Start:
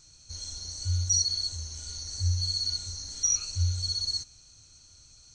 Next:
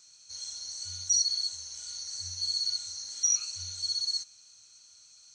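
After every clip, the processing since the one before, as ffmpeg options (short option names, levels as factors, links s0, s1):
-af "highpass=f=1300:p=1"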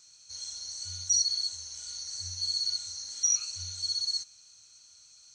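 -af "lowshelf=f=98:g=5.5"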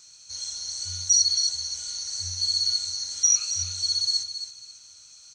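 -af "aecho=1:1:271|542|813:0.335|0.0804|0.0193,volume=2"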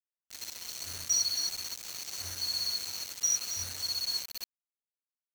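-af "acrusher=bits=4:mix=0:aa=0.000001,volume=0.376"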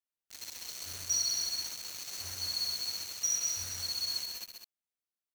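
-af "aecho=1:1:132|177|203:0.473|0.168|0.376,volume=0.708"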